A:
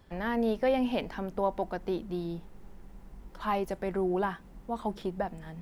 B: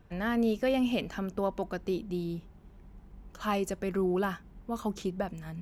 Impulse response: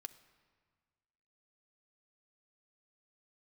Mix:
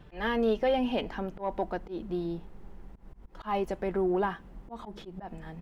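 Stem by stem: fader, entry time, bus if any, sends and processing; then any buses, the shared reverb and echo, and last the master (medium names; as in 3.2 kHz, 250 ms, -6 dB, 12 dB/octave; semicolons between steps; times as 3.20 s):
+2.0 dB, 0.00 s, no send, none
+1.0 dB, 2.4 ms, send -17 dB, peaking EQ 3.3 kHz +12 dB 1 oct; comb 6.6 ms, depth 77%; auto duck -22 dB, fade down 1.15 s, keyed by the first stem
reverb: on, RT60 1.7 s, pre-delay 3 ms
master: saturation -15.5 dBFS, distortion -25 dB; slow attack 135 ms; treble shelf 4.3 kHz -10.5 dB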